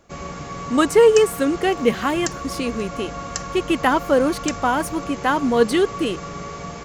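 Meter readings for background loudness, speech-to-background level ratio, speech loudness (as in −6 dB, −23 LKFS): −31.5 LKFS, 11.5 dB, −20.0 LKFS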